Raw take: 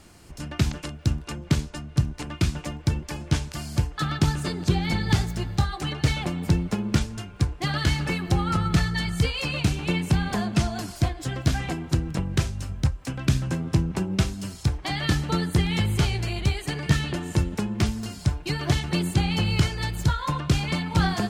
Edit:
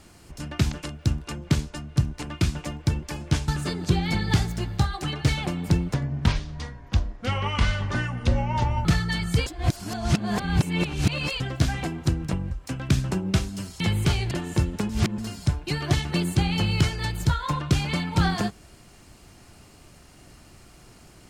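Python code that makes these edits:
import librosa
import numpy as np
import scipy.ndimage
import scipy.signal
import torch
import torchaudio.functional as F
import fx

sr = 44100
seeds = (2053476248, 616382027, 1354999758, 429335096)

y = fx.edit(x, sr, fx.cut(start_s=3.48, length_s=0.79),
    fx.speed_span(start_s=6.73, length_s=1.98, speed=0.68),
    fx.reverse_span(start_s=9.32, length_s=1.94),
    fx.cut(start_s=12.37, length_s=0.52),
    fx.cut(start_s=13.49, length_s=0.47),
    fx.cut(start_s=14.65, length_s=1.08),
    fx.cut(start_s=16.24, length_s=0.86),
    fx.reverse_span(start_s=17.68, length_s=0.29), tone=tone)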